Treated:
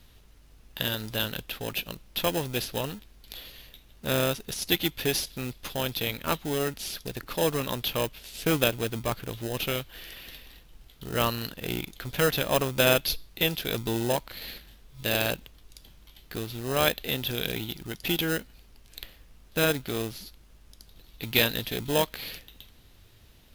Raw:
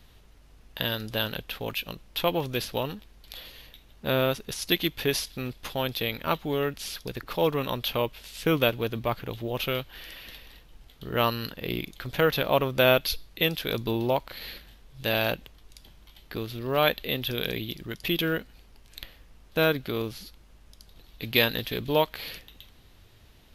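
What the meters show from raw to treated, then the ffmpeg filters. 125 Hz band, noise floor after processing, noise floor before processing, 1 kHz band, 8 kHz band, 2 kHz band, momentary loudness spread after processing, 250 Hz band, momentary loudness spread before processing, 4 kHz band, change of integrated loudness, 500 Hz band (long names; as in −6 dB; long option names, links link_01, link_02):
−0.5 dB, −55 dBFS, −55 dBFS, −2.5 dB, +6.5 dB, −1.0 dB, 17 LU, −1.0 dB, 17 LU, 0.0 dB, −0.5 dB, −2.0 dB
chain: -filter_complex "[0:a]aemphasis=mode=reproduction:type=cd,asplit=2[link_01][link_02];[link_02]acrusher=samples=39:mix=1:aa=0.000001,volume=-8.5dB[link_03];[link_01][link_03]amix=inputs=2:normalize=0,crystalizer=i=3:c=0,volume=-3.5dB"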